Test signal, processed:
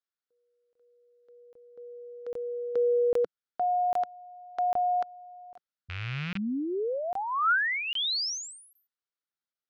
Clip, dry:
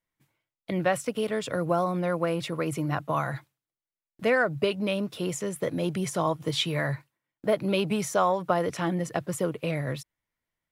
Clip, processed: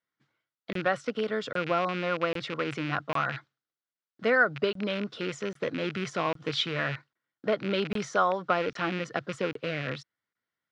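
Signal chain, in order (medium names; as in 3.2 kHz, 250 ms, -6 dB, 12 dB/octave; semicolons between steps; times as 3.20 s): rattle on loud lows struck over -31 dBFS, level -23 dBFS; cabinet simulation 160–5300 Hz, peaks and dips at 170 Hz -5 dB, 330 Hz -3 dB, 610 Hz -4 dB, 920 Hz -5 dB, 1.4 kHz +7 dB, 2.5 kHz -6 dB; crackling interface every 0.80 s, samples 1024, zero, from 0.73 s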